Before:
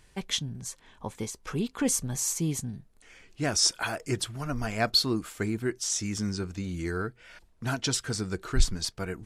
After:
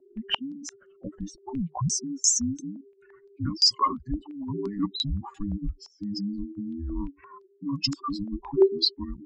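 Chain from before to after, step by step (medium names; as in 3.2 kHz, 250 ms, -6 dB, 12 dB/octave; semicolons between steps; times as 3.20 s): spectral contrast enhancement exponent 3; frequency shift -410 Hz; step-sequenced low-pass 5.8 Hz 630–6700 Hz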